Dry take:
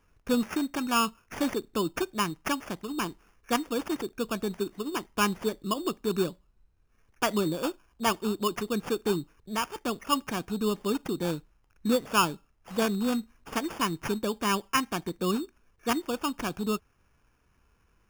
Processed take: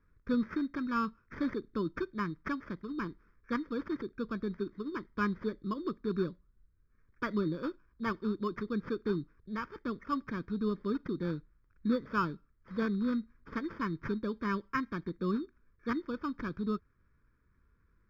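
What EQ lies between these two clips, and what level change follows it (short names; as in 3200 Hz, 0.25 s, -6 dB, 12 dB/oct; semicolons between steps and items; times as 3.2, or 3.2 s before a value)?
air absorption 350 m; fixed phaser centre 2800 Hz, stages 6; -1.5 dB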